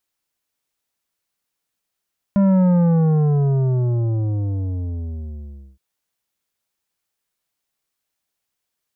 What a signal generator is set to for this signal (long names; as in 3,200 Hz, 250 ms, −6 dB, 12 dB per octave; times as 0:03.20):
bass drop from 200 Hz, over 3.42 s, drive 10 dB, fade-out 3.17 s, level −13 dB